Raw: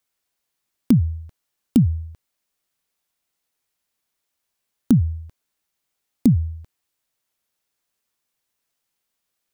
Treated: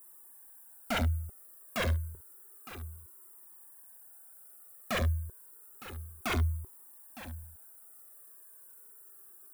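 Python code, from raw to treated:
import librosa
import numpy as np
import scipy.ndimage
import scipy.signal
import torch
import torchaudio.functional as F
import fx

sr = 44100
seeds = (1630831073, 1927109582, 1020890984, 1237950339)

p1 = fx.rattle_buzz(x, sr, strikes_db=-18.0, level_db=-13.0)
p2 = fx.dmg_noise_colour(p1, sr, seeds[0], colour='blue', level_db=-49.0)
p3 = scipy.signal.sosfilt(scipy.signal.cheby2(4, 40, [2400.0, 5900.0], 'bandstop', fs=sr, output='sos'), p2)
p4 = fx.dynamic_eq(p3, sr, hz=2300.0, q=0.71, threshold_db=-47.0, ratio=4.0, max_db=7)
p5 = (np.mod(10.0 ** (12.5 / 20.0) * p4 + 1.0, 2.0) - 1.0) / 10.0 ** (12.5 / 20.0)
p6 = fx.peak_eq(p5, sr, hz=380.0, db=14.5, octaves=0.36)
p7 = 10.0 ** (-20.5 / 20.0) * (np.abs((p6 / 10.0 ** (-20.5 / 20.0) + 3.0) % 4.0 - 2.0) - 1.0)
p8 = p7 + fx.echo_single(p7, sr, ms=911, db=-14.5, dry=0)
y = fx.comb_cascade(p8, sr, direction='falling', hz=0.3)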